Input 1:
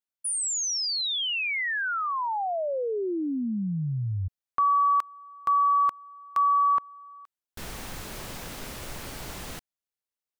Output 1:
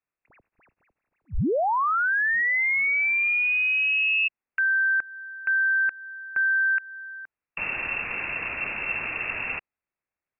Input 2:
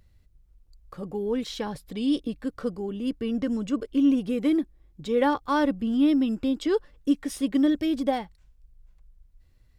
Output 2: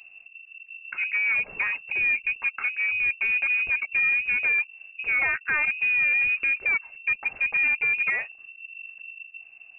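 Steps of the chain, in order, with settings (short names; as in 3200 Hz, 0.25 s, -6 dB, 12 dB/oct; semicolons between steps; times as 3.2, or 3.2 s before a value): compressor 2:1, threshold -31 dBFS; hard clip -28.5 dBFS; inverted band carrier 2700 Hz; gain +8 dB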